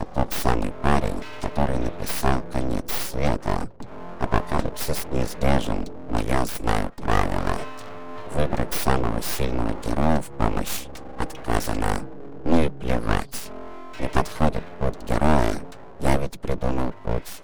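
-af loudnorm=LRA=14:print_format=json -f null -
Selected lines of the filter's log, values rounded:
"input_i" : "-26.0",
"input_tp" : "-2.9",
"input_lra" : "1.1",
"input_thresh" : "-36.3",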